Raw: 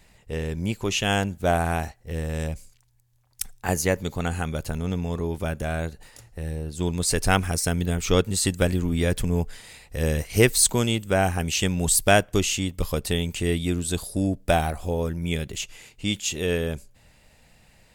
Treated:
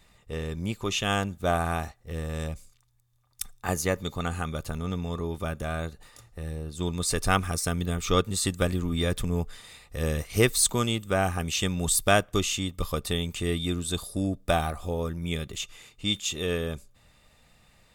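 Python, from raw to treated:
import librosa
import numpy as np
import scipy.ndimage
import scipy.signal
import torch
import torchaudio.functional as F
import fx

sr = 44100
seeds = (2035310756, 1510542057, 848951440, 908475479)

y = fx.small_body(x, sr, hz=(1200.0, 3600.0), ring_ms=45, db=14)
y = y * 10.0 ** (-4.0 / 20.0)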